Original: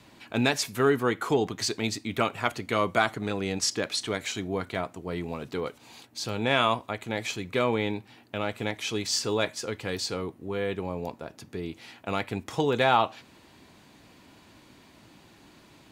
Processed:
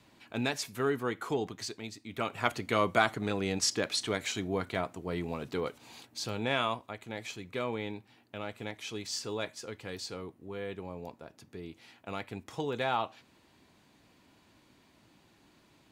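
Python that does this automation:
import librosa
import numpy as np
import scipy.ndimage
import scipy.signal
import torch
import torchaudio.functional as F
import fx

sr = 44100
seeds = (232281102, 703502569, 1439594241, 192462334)

y = fx.gain(x, sr, db=fx.line((1.47, -7.5), (1.96, -14.5), (2.45, -2.0), (6.08, -2.0), (6.83, -9.0)))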